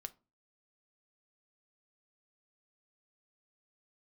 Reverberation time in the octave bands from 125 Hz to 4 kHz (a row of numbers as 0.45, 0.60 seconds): 0.45, 0.45, 0.35, 0.30, 0.20, 0.20 seconds